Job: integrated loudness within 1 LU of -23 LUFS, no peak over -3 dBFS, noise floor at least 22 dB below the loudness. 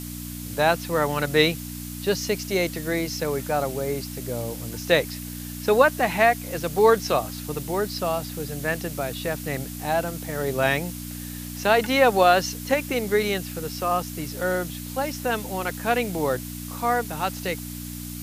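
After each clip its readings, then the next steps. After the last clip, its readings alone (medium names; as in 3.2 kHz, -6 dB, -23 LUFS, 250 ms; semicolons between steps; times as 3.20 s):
hum 60 Hz; highest harmonic 300 Hz; hum level -33 dBFS; noise floor -35 dBFS; noise floor target -47 dBFS; loudness -24.5 LUFS; peak level -3.0 dBFS; loudness target -23.0 LUFS
-> de-hum 60 Hz, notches 5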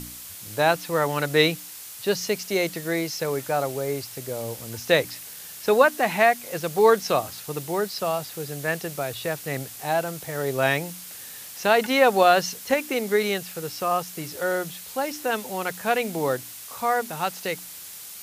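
hum not found; noise floor -40 dBFS; noise floor target -47 dBFS
-> noise reduction 7 dB, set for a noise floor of -40 dBFS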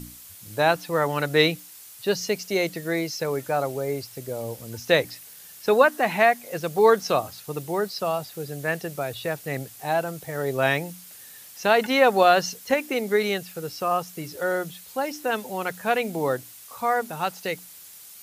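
noise floor -45 dBFS; noise floor target -47 dBFS
-> noise reduction 6 dB, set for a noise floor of -45 dBFS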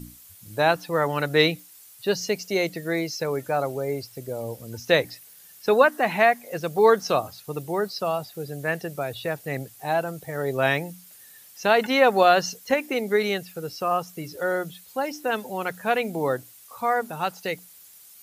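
noise floor -49 dBFS; loudness -24.5 LUFS; peak level -3.0 dBFS; loudness target -23.0 LUFS
-> trim +1.5 dB; peak limiter -3 dBFS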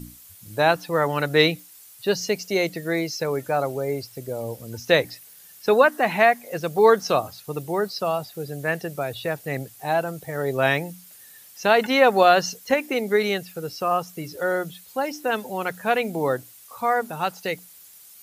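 loudness -23.0 LUFS; peak level -3.0 dBFS; noise floor -48 dBFS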